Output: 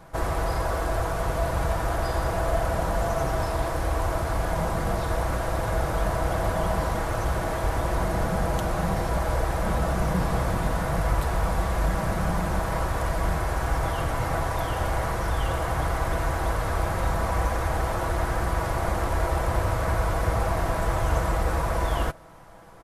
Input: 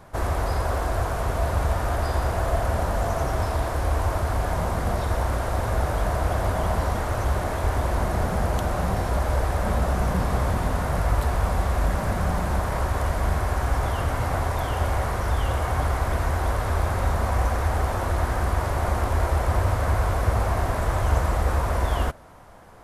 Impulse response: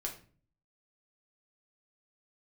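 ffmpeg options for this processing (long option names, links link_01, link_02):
-af "aecho=1:1:6.1:0.44,volume=-1dB"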